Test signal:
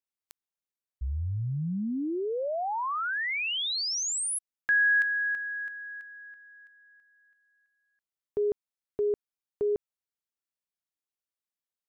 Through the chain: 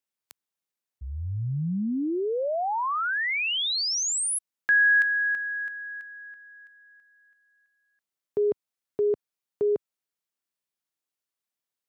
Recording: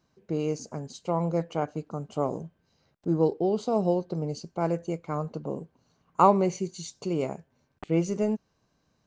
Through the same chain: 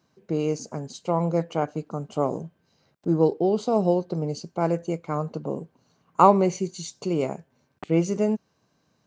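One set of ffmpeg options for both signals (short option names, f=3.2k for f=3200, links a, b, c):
-af "highpass=98,volume=3.5dB"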